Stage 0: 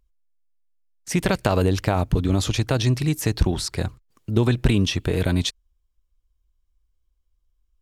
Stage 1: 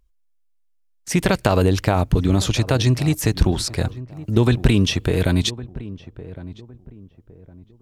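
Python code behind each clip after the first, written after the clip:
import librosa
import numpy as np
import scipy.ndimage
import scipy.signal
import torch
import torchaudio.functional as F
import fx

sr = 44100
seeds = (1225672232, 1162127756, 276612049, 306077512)

y = fx.echo_filtered(x, sr, ms=1110, feedback_pct=32, hz=1000.0, wet_db=-16.0)
y = y * librosa.db_to_amplitude(3.0)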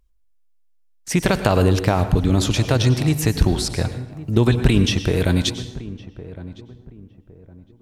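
y = fx.rev_plate(x, sr, seeds[0], rt60_s=0.72, hf_ratio=0.85, predelay_ms=85, drr_db=10.5)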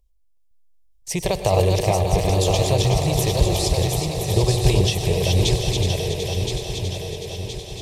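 y = fx.reverse_delay_fb(x, sr, ms=510, feedback_pct=70, wet_db=-3.5)
y = fx.fixed_phaser(y, sr, hz=600.0, stages=4)
y = fx.echo_thinned(y, sr, ms=371, feedback_pct=69, hz=220.0, wet_db=-7)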